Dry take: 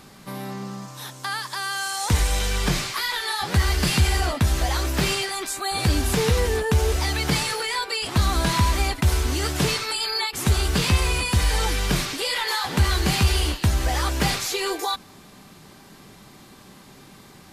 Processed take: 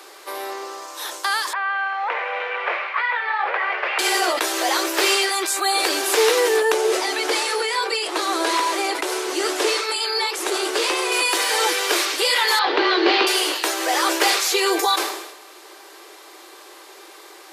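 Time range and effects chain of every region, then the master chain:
0:01.53–0:03.99: elliptic band-pass filter 520–2,400 Hz, stop band 80 dB + highs frequency-modulated by the lows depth 0.13 ms
0:06.72–0:11.12: low-pass filter 12,000 Hz 24 dB per octave + parametric band 320 Hz +5 dB 2.6 octaves + flanger 1.6 Hz, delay 1.1 ms, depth 8.3 ms, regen +80%
0:12.59–0:13.27: Butterworth low-pass 4,500 Hz + parametric band 210 Hz +10.5 dB 2 octaves
whole clip: Chebyshev high-pass filter 330 Hz, order 6; level that may fall only so fast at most 59 dB per second; level +7 dB

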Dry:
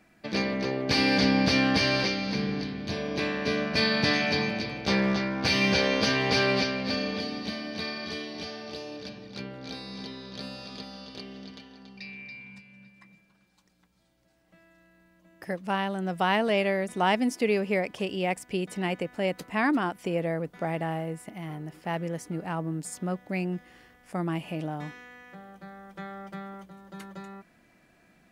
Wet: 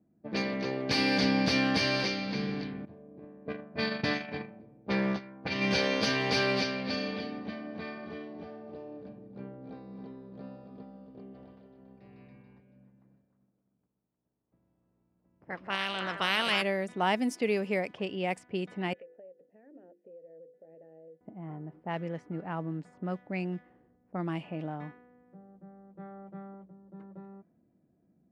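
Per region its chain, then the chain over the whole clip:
0:02.85–0:05.71: high-shelf EQ 4,900 Hz −12 dB + noise gate −27 dBFS, range −14 dB
0:11.33–0:16.61: ceiling on every frequency bin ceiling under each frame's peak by 20 dB + parametric band 390 Hz −4.5 dB 1.3 octaves + echo through a band-pass that steps 154 ms, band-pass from 3,700 Hz, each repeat −1.4 octaves, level −1 dB
0:18.93–0:21.21: formant filter e + mains-hum notches 50/100/150/200/250/300/350/400/450/500 Hz + downward compressor 10 to 1, threshold −41 dBFS
whole clip: high-pass filter 90 Hz; low-pass that shuts in the quiet parts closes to 330 Hz, open at −23 dBFS; level −3.5 dB

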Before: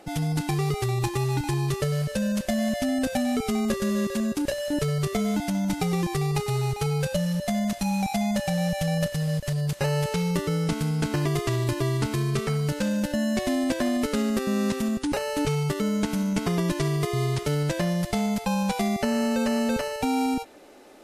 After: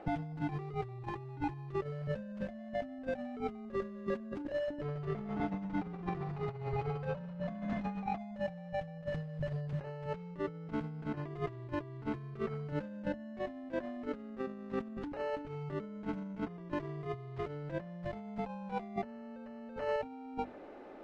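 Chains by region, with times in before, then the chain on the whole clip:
0:04.81–0:08.18: hard clipping −23.5 dBFS + high-frequency loss of the air 59 metres + repeating echo 142 ms, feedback 47%, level −6.5 dB
whole clip: low-pass filter 1,700 Hz 12 dB per octave; mains-hum notches 50/100/150/200/250/300/350/400 Hz; compressor whose output falls as the input rises −32 dBFS, ratio −0.5; level −6 dB

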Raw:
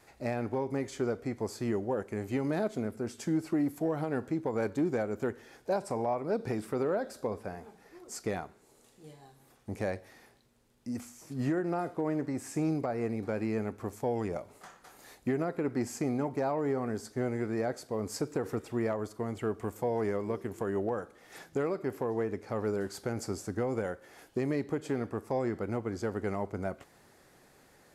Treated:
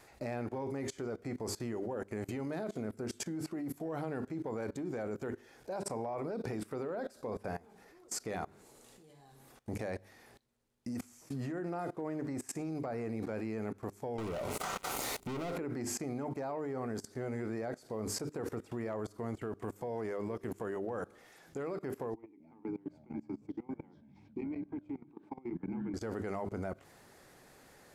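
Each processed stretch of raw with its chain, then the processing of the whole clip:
0:14.18–0:15.58: leveller curve on the samples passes 5 + Butterworth band-reject 1,700 Hz, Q 7.1
0:22.14–0:25.94: formant filter u + delay with pitch and tempo change per echo 259 ms, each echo −6 semitones, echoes 3, each echo −6 dB
whole clip: mains-hum notches 50/100/150/200/250/300/350/400 Hz; output level in coarse steps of 22 dB; level +6.5 dB

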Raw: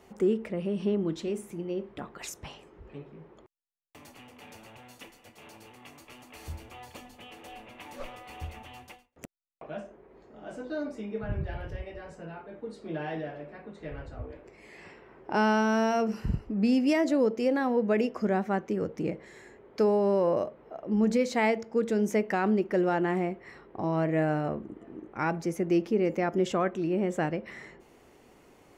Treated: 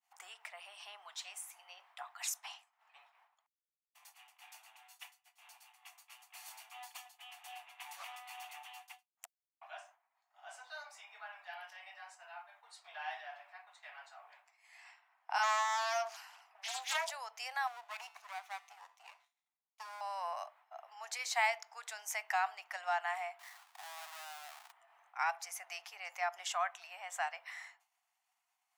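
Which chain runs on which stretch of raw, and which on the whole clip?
0:15.38–0:17.10: low-shelf EQ 170 Hz −12 dB + all-pass dispersion lows, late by 60 ms, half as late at 540 Hz + highs frequency-modulated by the lows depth 0.43 ms
0:17.67–0:20.01: lower of the sound and its delayed copy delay 0.32 ms + tuned comb filter 78 Hz, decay 1.2 s, harmonics odd + one half of a high-frequency compander decoder only
0:23.39–0:24.72: each half-wave held at its own peak + high-shelf EQ 3,800 Hz −7.5 dB + downward compressor 3 to 1, threshold −44 dBFS
whole clip: downward expander −44 dBFS; Chebyshev high-pass filter 710 Hz, order 6; high-shelf EQ 4,700 Hz +9.5 dB; level −3 dB

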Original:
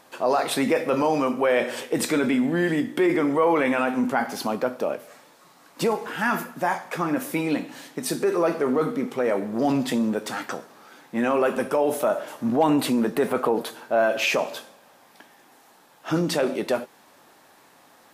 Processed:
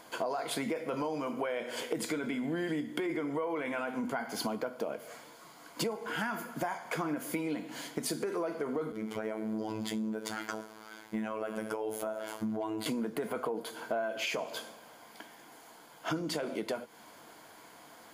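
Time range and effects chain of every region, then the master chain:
0:08.92–0:12.86: phases set to zero 109 Hz + notch filter 250 Hz, Q 6.9 + downward compressor 2 to 1, threshold −30 dBFS
whole clip: EQ curve with evenly spaced ripples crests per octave 1.8, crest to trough 7 dB; downward compressor 12 to 1, threshold −31 dBFS

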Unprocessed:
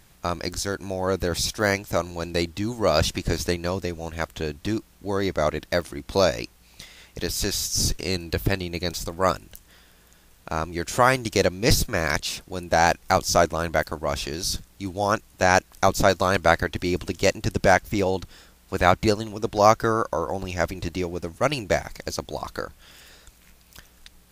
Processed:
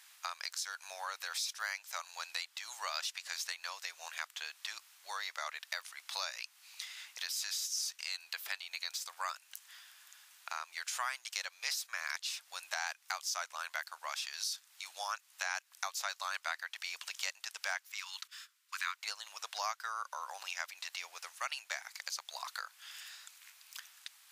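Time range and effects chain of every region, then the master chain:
0:17.92–0:18.97: Butterworth high-pass 1,000 Hz 72 dB per octave + noise gate −53 dBFS, range −14 dB
whole clip: Bessel high-pass filter 1,500 Hz, order 6; high-shelf EQ 11,000 Hz −5 dB; downward compressor 3 to 1, threshold −40 dBFS; level +1.5 dB

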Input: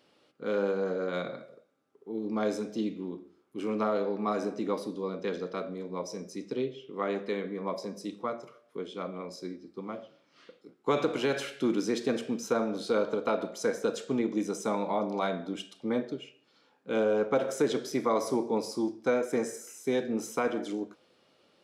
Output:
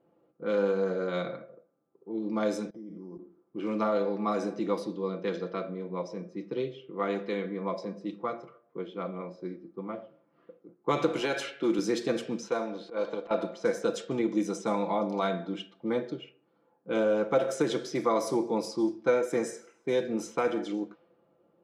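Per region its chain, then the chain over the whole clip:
0:02.70–0:03.19: output level in coarse steps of 22 dB + bad sample-rate conversion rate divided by 8×, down filtered, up hold + Butterworth band-reject 2,700 Hz, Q 3.6
0:11.20–0:11.79: high-pass filter 210 Hz + one half of a high-frequency compander encoder only
0:12.48–0:13.31: low-shelf EQ 320 Hz −10.5 dB + notch filter 1,300 Hz, Q 6.1 + volume swells 115 ms
whole clip: low-pass that shuts in the quiet parts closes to 750 Hz, open at −26 dBFS; comb filter 5.9 ms, depth 51%

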